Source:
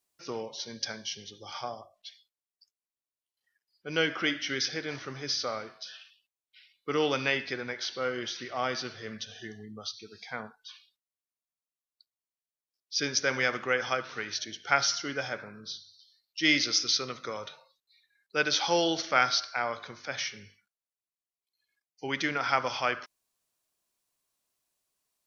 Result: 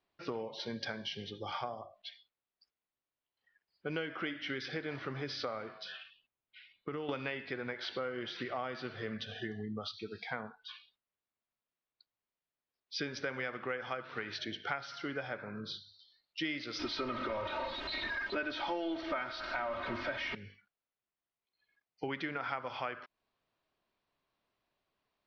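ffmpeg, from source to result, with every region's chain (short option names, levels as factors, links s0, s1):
-filter_complex "[0:a]asettb=1/sr,asplit=3[s0][s1][s2];[s0]atrim=end=5.924[s3];[s1]atrim=start=5.92:end=7.09,asetpts=PTS-STARTPTS,afade=t=in:d=0.004:c=qsin,afade=t=out:st=1.166:d=0.004:c=qsin,bass=f=250:g=5,treble=f=4000:g=-5,acompressor=threshold=0.01:ratio=5:attack=3.2:release=140:knee=1:detection=peak[s4];[s2]atrim=start=7.086[s5];[s3][s4]acrossfade=d=0.004:c1=hsin:c2=qsin[s6];[s6][s5]acrossfade=d=0.004:c1=qsin:c2=hsin,asettb=1/sr,asplit=3[s7][s8][s9];[s7]atrim=end=16.794[s10];[s8]atrim=start=16.79:end=20.35,asetpts=PTS-STARTPTS,afade=t=in:d=0.004:c=qsin,afade=t=out:st=3.556:d=0.004:c=qsin,aeval=exprs='val(0)+0.5*0.0376*sgn(val(0))':c=same,aemphasis=mode=reproduction:type=50fm,aecho=1:1:3.2:0.87,atrim=end_sample=156996[s11];[s9]atrim=start=20.346[s12];[s10][s11]acrossfade=d=0.004:c1=hsin:c2=qsin[s13];[s13][s12]acrossfade=d=0.004:c1=qsin:c2=hsin,lowpass=f=4300:w=0.5412,lowpass=f=4300:w=1.3066,aemphasis=mode=reproduction:type=75kf,acompressor=threshold=0.00794:ratio=6,volume=2.11"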